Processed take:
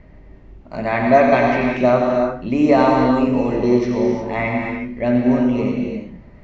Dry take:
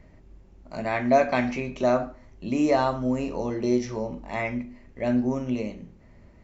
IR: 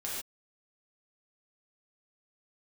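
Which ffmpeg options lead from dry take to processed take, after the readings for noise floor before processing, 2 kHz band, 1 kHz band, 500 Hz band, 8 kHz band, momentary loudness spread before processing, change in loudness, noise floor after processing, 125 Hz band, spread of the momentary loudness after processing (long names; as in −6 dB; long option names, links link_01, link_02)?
−52 dBFS, +9.0 dB, +9.0 dB, +9.0 dB, can't be measured, 14 LU, +9.0 dB, −43 dBFS, +8.5 dB, 10 LU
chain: -filter_complex "[0:a]lowpass=3500,asplit=2[link_01][link_02];[1:a]atrim=start_sample=2205,asetrate=24255,aresample=44100,adelay=88[link_03];[link_02][link_03]afir=irnorm=-1:irlink=0,volume=-7.5dB[link_04];[link_01][link_04]amix=inputs=2:normalize=0,volume=6.5dB"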